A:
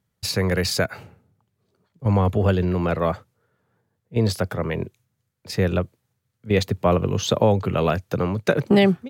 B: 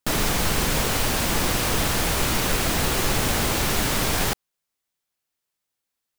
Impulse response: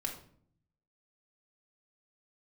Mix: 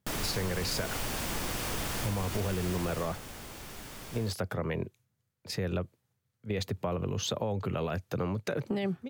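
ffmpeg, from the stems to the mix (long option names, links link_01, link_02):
-filter_complex "[0:a]alimiter=limit=-14.5dB:level=0:latency=1:release=25,volume=-5dB[link_01];[1:a]bandreject=frequency=4000:width=26,volume=-10.5dB,afade=type=out:start_time=2.75:duration=0.45:silence=0.266073[link_02];[link_01][link_02]amix=inputs=2:normalize=0,acompressor=threshold=-28dB:ratio=6"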